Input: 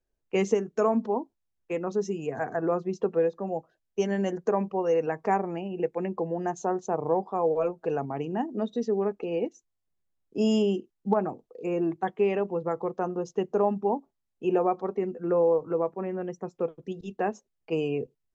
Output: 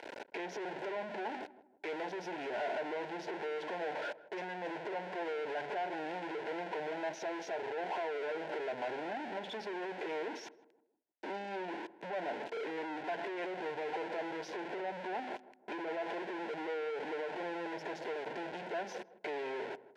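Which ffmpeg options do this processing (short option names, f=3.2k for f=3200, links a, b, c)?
-filter_complex "[0:a]aeval=exprs='val(0)+0.5*0.0266*sgn(val(0))':c=same,alimiter=limit=-20.5dB:level=0:latency=1:release=54,acompressor=threshold=-33dB:ratio=1.5,asoftclip=type=tanh:threshold=-37.5dB,asuperstop=centerf=1300:order=4:qfactor=2.8,asplit=2[a][b];[b]adelay=146,lowpass=f=950:p=1,volume=-15dB,asplit=2[c][d];[d]adelay=146,lowpass=f=950:p=1,volume=0.44,asplit=2[e][f];[f]adelay=146,lowpass=f=950:p=1,volume=0.44,asplit=2[g][h];[h]adelay=146,lowpass=f=950:p=1,volume=0.44[i];[c][e][g][i]amix=inputs=4:normalize=0[j];[a][j]amix=inputs=2:normalize=0,asetrate=40517,aresample=44100,highpass=580,lowpass=2.1k,volume=6.5dB"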